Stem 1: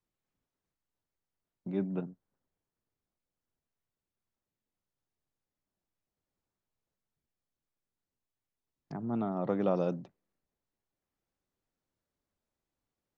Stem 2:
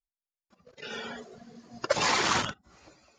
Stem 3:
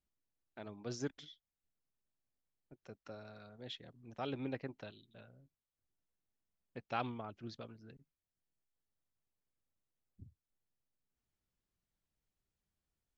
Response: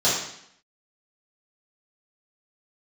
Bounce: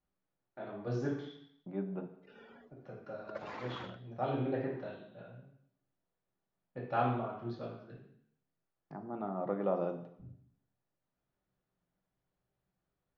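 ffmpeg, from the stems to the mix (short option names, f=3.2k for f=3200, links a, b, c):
-filter_complex "[0:a]lowshelf=f=300:g=-8.5,volume=-3dB,asplit=2[a][b];[b]volume=-22dB[c];[1:a]equalizer=f=320:w=1.5:g=5.5,adelay=1450,volume=-18.5dB[d];[2:a]volume=-2dB,asplit=2[e][f];[f]volume=-9.5dB[g];[3:a]atrim=start_sample=2205[h];[c][g]amix=inputs=2:normalize=0[i];[i][h]afir=irnorm=-1:irlink=0[j];[a][d][e][j]amix=inputs=4:normalize=0,lowpass=2.1k"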